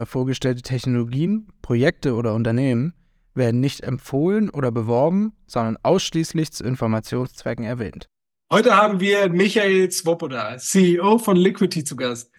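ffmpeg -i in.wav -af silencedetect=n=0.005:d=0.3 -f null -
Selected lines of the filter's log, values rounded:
silence_start: 2.92
silence_end: 3.36 | silence_duration: 0.44
silence_start: 8.05
silence_end: 8.51 | silence_duration: 0.46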